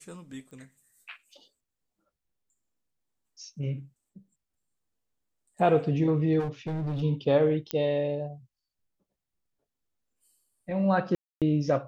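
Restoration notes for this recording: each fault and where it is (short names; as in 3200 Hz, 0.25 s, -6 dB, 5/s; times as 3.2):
0.51 pop -39 dBFS
6.39–7.03 clipped -28 dBFS
7.71 pop -14 dBFS
11.15–11.42 gap 0.267 s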